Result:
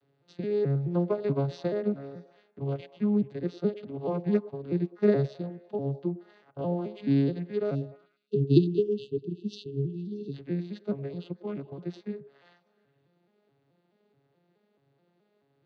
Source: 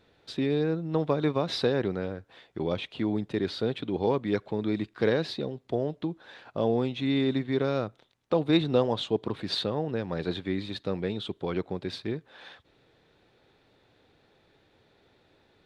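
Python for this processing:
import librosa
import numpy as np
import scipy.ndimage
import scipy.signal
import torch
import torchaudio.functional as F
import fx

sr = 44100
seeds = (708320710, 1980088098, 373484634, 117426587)

y = fx.vocoder_arp(x, sr, chord='major triad', root=49, every_ms=214)
y = fx.spec_erase(y, sr, start_s=7.75, length_s=2.59, low_hz=440.0, high_hz=2600.0)
y = fx.echo_stepped(y, sr, ms=104, hz=470.0, octaves=0.7, feedback_pct=70, wet_db=-11)
y = fx.upward_expand(y, sr, threshold_db=-33.0, expansion=1.5)
y = F.gain(torch.from_numpy(y), 4.0).numpy()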